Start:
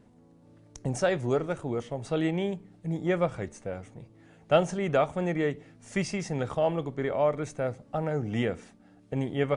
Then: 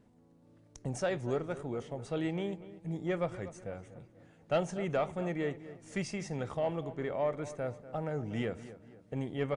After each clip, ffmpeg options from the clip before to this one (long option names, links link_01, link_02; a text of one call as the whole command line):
ffmpeg -i in.wav -filter_complex "[0:a]asoftclip=type=tanh:threshold=-14.5dB,asplit=2[link_01][link_02];[link_02]adelay=243,lowpass=frequency=2300:poles=1,volume=-14.5dB,asplit=2[link_03][link_04];[link_04]adelay=243,lowpass=frequency=2300:poles=1,volume=0.43,asplit=2[link_05][link_06];[link_06]adelay=243,lowpass=frequency=2300:poles=1,volume=0.43,asplit=2[link_07][link_08];[link_08]adelay=243,lowpass=frequency=2300:poles=1,volume=0.43[link_09];[link_01][link_03][link_05][link_07][link_09]amix=inputs=5:normalize=0,volume=-6dB" out.wav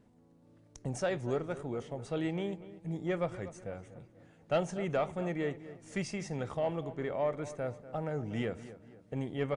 ffmpeg -i in.wav -af anull out.wav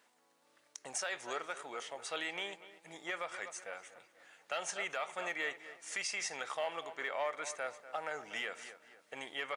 ffmpeg -i in.wav -af "highpass=1300,alimiter=level_in=13dB:limit=-24dB:level=0:latency=1:release=103,volume=-13dB,asoftclip=type=hard:threshold=-38dB,volume=10dB" out.wav